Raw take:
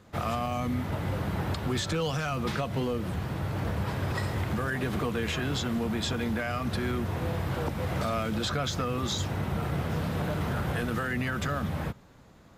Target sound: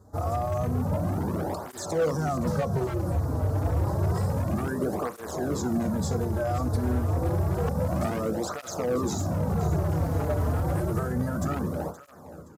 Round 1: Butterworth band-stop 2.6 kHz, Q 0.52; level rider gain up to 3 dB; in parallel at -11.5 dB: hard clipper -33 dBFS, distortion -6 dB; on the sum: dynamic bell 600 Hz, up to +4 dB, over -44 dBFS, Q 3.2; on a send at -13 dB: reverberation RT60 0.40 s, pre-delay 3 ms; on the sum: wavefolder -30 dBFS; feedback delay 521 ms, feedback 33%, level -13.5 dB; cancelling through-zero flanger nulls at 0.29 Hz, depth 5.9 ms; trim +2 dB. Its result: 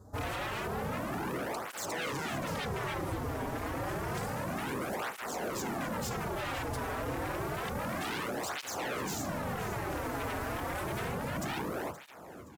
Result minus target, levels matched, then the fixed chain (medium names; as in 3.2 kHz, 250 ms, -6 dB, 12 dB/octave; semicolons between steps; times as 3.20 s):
wavefolder: distortion +37 dB
Butterworth band-stop 2.6 kHz, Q 0.52; level rider gain up to 3 dB; in parallel at -11.5 dB: hard clipper -33 dBFS, distortion -6 dB; on the sum: dynamic bell 600 Hz, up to +4 dB, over -44 dBFS, Q 3.2; on a send at -13 dB: reverberation RT60 0.40 s, pre-delay 3 ms; on the sum: wavefolder -20 dBFS; feedback delay 521 ms, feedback 33%, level -13.5 dB; cancelling through-zero flanger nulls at 0.29 Hz, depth 5.9 ms; trim +2 dB